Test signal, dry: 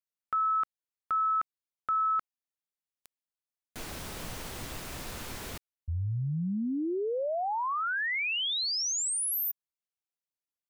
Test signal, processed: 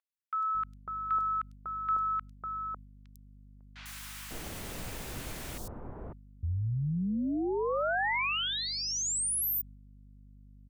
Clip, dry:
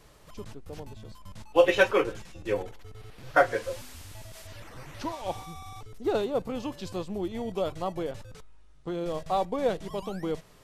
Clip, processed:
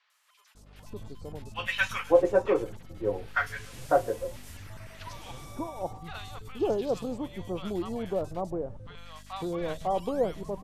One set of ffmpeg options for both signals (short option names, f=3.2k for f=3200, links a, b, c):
-filter_complex "[0:a]aeval=exprs='val(0)+0.00355*(sin(2*PI*50*n/s)+sin(2*PI*2*50*n/s)/2+sin(2*PI*3*50*n/s)/3+sin(2*PI*4*50*n/s)/4+sin(2*PI*5*50*n/s)/5)':c=same,acrossover=split=1100|4500[a][b][c];[c]adelay=100[d];[a]adelay=550[e];[e][b][d]amix=inputs=3:normalize=0,agate=range=-6dB:threshold=-46dB:ratio=3:release=215:detection=peak"